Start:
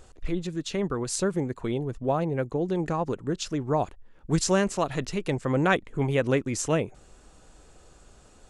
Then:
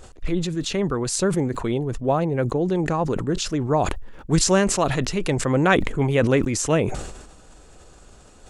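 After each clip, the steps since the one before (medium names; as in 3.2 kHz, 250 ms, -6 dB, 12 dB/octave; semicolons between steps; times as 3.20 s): decay stretcher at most 53 dB/s; trim +4.5 dB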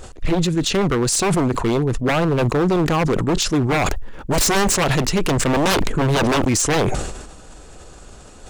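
wavefolder -19 dBFS; trim +7 dB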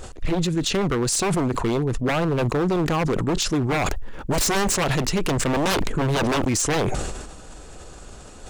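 compression 2:1, threshold -22 dBFS, peak gain reduction 4.5 dB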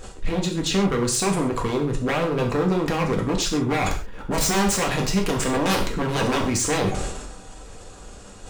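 gated-style reverb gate 160 ms falling, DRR 0 dB; trim -3 dB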